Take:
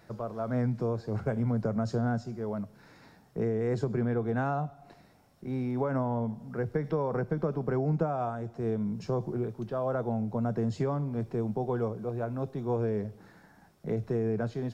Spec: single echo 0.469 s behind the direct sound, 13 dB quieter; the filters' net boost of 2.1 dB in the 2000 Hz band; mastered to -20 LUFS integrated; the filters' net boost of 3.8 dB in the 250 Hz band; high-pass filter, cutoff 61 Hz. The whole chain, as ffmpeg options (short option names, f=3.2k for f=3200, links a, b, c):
-af "highpass=61,equalizer=f=250:t=o:g=4.5,equalizer=f=2k:t=o:g=3,aecho=1:1:469:0.224,volume=9.5dB"